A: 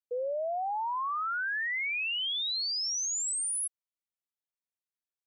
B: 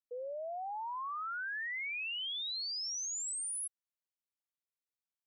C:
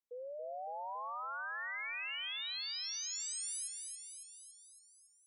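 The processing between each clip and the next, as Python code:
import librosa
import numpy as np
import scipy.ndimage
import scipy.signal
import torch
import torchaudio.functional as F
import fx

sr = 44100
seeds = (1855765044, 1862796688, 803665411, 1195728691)

y1 = fx.low_shelf(x, sr, hz=480.0, db=-5.0)
y1 = F.gain(torch.from_numpy(y1), -6.5).numpy()
y2 = fx.echo_feedback(y1, sr, ms=279, feedback_pct=59, wet_db=-5)
y2 = F.gain(torch.from_numpy(y2), -4.0).numpy()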